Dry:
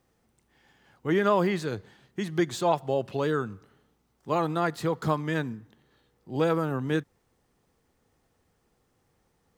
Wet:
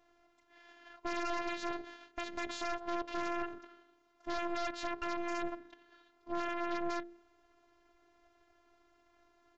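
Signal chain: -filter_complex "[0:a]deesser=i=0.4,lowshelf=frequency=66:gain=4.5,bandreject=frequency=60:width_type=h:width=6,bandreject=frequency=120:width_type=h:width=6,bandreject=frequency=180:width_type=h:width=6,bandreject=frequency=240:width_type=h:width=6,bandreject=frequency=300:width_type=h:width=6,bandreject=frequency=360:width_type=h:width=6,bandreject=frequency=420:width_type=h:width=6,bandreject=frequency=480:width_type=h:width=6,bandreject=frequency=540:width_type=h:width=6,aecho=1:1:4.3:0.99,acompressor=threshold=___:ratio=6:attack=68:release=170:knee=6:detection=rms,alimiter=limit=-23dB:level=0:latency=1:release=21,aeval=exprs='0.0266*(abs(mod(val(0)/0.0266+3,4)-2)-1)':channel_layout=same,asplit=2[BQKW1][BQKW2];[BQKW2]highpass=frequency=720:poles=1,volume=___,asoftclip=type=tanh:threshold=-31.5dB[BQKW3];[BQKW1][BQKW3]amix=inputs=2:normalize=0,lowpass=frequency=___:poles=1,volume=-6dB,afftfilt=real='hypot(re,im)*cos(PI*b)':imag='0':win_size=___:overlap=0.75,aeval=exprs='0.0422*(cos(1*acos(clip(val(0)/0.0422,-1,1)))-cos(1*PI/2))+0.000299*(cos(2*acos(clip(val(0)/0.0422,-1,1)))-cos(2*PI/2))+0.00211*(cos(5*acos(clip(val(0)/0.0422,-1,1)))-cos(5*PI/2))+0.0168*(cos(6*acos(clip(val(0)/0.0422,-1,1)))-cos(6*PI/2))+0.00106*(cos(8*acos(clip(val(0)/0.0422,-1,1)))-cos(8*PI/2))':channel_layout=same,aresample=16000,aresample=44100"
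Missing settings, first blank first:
-33dB, 12dB, 1.3k, 512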